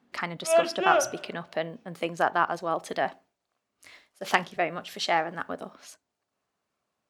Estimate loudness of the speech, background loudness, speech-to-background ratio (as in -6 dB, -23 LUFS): -29.5 LUFS, -26.0 LUFS, -3.5 dB